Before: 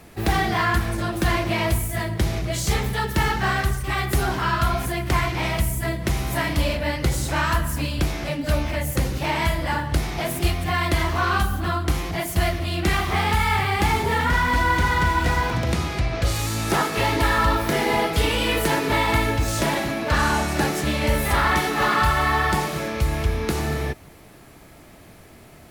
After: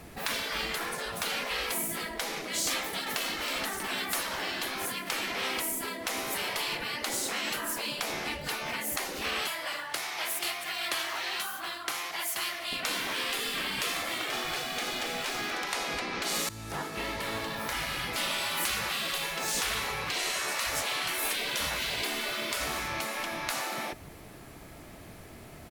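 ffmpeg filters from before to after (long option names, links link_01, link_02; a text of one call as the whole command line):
ffmpeg -i in.wav -filter_complex "[0:a]asplit=2[link_01][link_02];[link_02]afade=type=in:start_time=2.74:duration=0.01,afade=type=out:start_time=3.26:duration=0.01,aecho=0:1:320|640|960|1280|1600|1920|2240:0.421697|0.231933|0.127563|0.0701598|0.0385879|0.0212233|0.0116728[link_03];[link_01][link_03]amix=inputs=2:normalize=0,asettb=1/sr,asplit=3[link_04][link_05][link_06];[link_04]atrim=end=9.474[link_07];[link_05]atrim=start=9.47:end=12.73,asetpts=PTS-STARTPTS,afade=type=in:duration=0.004:curve=qsin,afade=type=out:start_time=3.256:duration=0.004:curve=qsin,highpass=950[link_08];[link_06]atrim=start=12.726[link_09];[link_07][link_08]acrossfade=duration=0.004:curve1=hsin:curve2=qsin[link_10];[link_10][link_09]acrossfade=duration=0.004:curve1=qsin:curve2=hsin,asplit=2[link_11][link_12];[link_11]atrim=end=16.49,asetpts=PTS-STARTPTS,afade=type=out:start_time=16.486:duration=0.004:curve=hsin:silence=0.125893[link_13];[link_12]atrim=start=16.49,asetpts=PTS-STARTPTS,afade=type=in:duration=2.27:silence=0.125893[link_14];[link_13][link_14]concat=n=2:v=0:a=1,afftfilt=real='re*lt(hypot(re,im),0.126)':imag='im*lt(hypot(re,im),0.126)':win_size=1024:overlap=0.75,volume=-1dB" out.wav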